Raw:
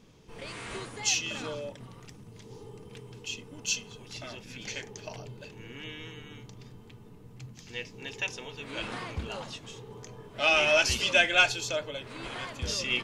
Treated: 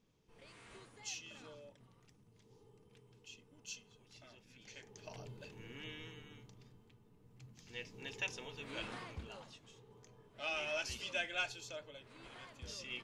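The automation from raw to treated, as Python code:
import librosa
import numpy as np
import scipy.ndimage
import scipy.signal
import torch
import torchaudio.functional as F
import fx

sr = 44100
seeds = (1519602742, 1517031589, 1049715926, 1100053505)

y = fx.gain(x, sr, db=fx.line((4.69, -18.0), (5.23, -7.0), (5.94, -7.0), (7.07, -16.0), (7.99, -7.0), (8.72, -7.0), (9.55, -16.0)))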